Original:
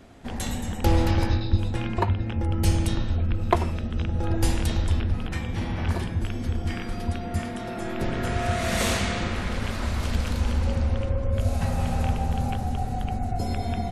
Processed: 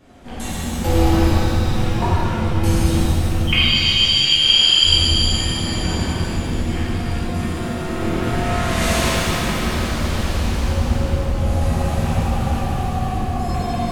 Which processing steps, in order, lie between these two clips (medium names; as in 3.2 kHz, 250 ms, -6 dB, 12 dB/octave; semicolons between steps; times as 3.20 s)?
3.47–4.84 s: frequency inversion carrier 3.2 kHz; pitch-shifted reverb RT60 3 s, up +7 st, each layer -8 dB, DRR -10.5 dB; trim -4.5 dB